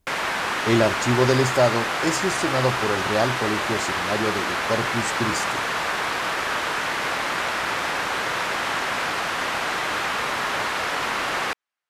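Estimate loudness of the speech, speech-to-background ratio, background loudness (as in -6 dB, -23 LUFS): -24.5 LUFS, -0.5 dB, -24.0 LUFS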